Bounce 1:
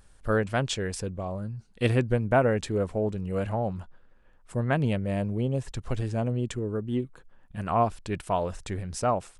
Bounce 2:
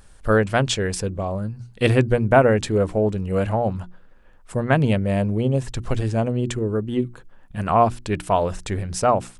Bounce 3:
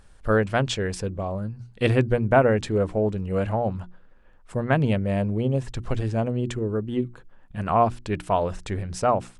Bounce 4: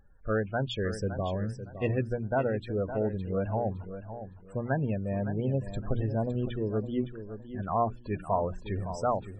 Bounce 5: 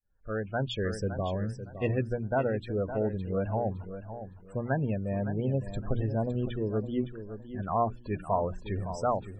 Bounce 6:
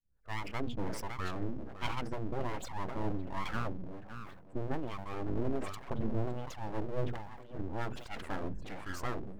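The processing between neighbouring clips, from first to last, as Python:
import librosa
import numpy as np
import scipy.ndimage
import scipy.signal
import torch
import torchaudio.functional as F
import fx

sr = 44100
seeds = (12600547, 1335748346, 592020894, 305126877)

y1 = fx.hum_notches(x, sr, base_hz=60, count=6)
y1 = F.gain(torch.from_numpy(y1), 7.5).numpy()
y2 = fx.high_shelf(y1, sr, hz=7200.0, db=-9.0)
y2 = F.gain(torch.from_numpy(y2), -3.0).numpy()
y3 = fx.spec_topn(y2, sr, count=32)
y3 = fx.rider(y3, sr, range_db=4, speed_s=0.5)
y3 = fx.echo_feedback(y3, sr, ms=562, feedback_pct=26, wet_db=-11.0)
y3 = F.gain(torch.from_numpy(y3), -6.5).numpy()
y4 = fx.fade_in_head(y3, sr, length_s=0.61)
y5 = fx.harmonic_tremolo(y4, sr, hz=1.3, depth_pct=100, crossover_hz=410.0)
y5 = np.abs(y5)
y5 = fx.sustainer(y5, sr, db_per_s=62.0)
y5 = F.gain(torch.from_numpy(y5), 1.0).numpy()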